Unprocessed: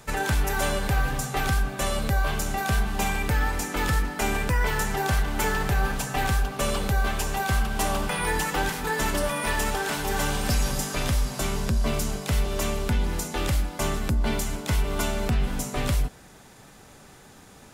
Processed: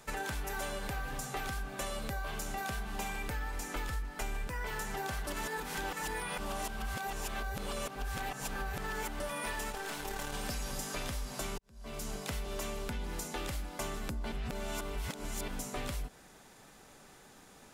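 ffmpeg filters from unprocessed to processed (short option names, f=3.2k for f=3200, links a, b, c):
-filter_complex "[0:a]asettb=1/sr,asplit=3[a][b][c];[a]atrim=end=3.134[d];[b]atrim=start=3.13:end=4.47,asetpts=PTS-STARTPTS,afade=t=in:d=0.004:c=qsin,afade=t=out:st=1.336:d=0.004:c=qsin,asubboost=boost=7.5:cutoff=110[e];[c]atrim=start=4.466[f];[d][e]acrossfade=d=0.004:c1=hsin:c2=qsin[g];[g][f]acrossfade=d=0.004:c1=qsin:c2=hsin,asettb=1/sr,asplit=3[h][i][j];[h]atrim=end=9.714[k];[i]atrim=start=9.71:end=10.34,asetpts=PTS-STARTPTS,afade=t=in:d=0.004:c=qsin,afade=t=out:st=0.626:d=0.004:c=qsin,aeval=exprs='(tanh(8.91*val(0)+0.7)-tanh(0.7))/8.91':c=same[l];[j]atrim=start=10.336[m];[k][l]acrossfade=d=0.004:c1=hsin:c2=qsin[n];[n][m]acrossfade=d=0.004:c1=qsin:c2=hsin,asplit=6[o][p][q][r][s][t];[o]atrim=end=5.272[u];[p]atrim=start=5.268:end=9.202,asetpts=PTS-STARTPTS,areverse[v];[q]atrim=start=9.198:end=11.58,asetpts=PTS-STARTPTS,afade=t=out:st=2.378:d=0.004:c=hsin[w];[r]atrim=start=11.58:end=14.322,asetpts=PTS-STARTPTS,afade=t=in:d=0.58:c=qua[x];[s]atrim=start=14.318:end=15.482,asetpts=PTS-STARTPTS,areverse[y];[t]atrim=start=15.478[z];[u][v]acrossfade=d=0.004:c1=hsin:c2=hsin[aa];[w][x]concat=n=2:v=0:a=1[ab];[aa][ab]acrossfade=d=0.004:c1=hsin:c2=hsin[ac];[ac][y]acrossfade=d=0.004:c1=hsin:c2=hsin[ad];[ad][z]acrossfade=d=0.004:c1=hsin:c2=hsin,equalizer=f=91:t=o:w=1.8:g=-7.5,acompressor=threshold=-28dB:ratio=6,volume=-6dB"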